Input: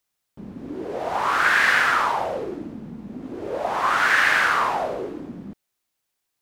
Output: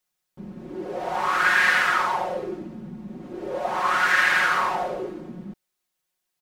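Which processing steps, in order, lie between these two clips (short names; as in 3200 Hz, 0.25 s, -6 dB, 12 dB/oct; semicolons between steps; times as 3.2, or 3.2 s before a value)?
comb 5.5 ms, depth 90%; gain -4 dB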